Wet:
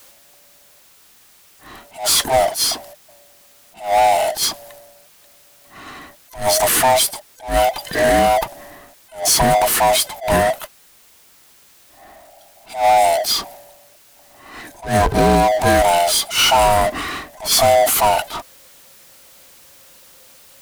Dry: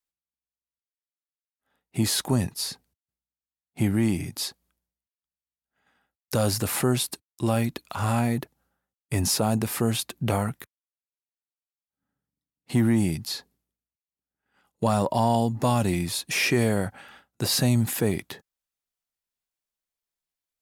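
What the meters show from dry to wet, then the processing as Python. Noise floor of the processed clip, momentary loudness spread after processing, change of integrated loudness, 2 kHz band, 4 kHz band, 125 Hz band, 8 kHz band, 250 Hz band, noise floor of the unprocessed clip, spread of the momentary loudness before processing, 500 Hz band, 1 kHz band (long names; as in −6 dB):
−50 dBFS, 13 LU, +10.0 dB, +11.0 dB, +12.0 dB, −2.5 dB, +11.5 dB, −1.5 dB, below −85 dBFS, 10 LU, +12.5 dB, +16.5 dB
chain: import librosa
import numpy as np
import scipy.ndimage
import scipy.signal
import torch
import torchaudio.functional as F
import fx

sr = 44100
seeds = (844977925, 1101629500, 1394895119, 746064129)

y = fx.band_swap(x, sr, width_hz=500)
y = fx.power_curve(y, sr, exponent=0.5)
y = fx.attack_slew(y, sr, db_per_s=170.0)
y = F.gain(torch.from_numpy(y), 4.5).numpy()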